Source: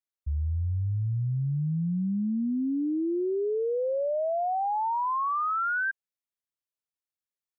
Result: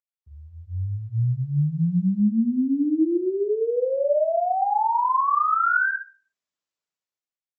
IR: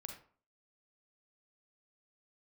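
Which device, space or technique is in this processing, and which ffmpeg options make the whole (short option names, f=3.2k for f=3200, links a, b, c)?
far-field microphone of a smart speaker: -filter_complex "[0:a]asettb=1/sr,asplit=3[a][b][c];[a]atrim=end=3.174[d];[b]atrim=start=3.17:end=4.8,asetpts=PTS-STARTPTS,afade=t=in:d=0.004:c=qsin,afade=t=out:st=1.626:d=0.004:c=qsin,equalizer=f=110:w=0.31:g=-4[e];[c]atrim=start=4.796[f];[d][e]acrossfade=d=0.004:c1=hsin:c2=qsin[g];[g][f]acrossfade=d=0.004:c1=qsin:c2=hsin[h];[1:a]atrim=start_sample=2205[i];[h][i]afir=irnorm=-1:irlink=0,highpass=130,dynaudnorm=f=160:g=9:m=14.5dB,volume=-4dB" -ar 48000 -c:a libopus -b:a 24k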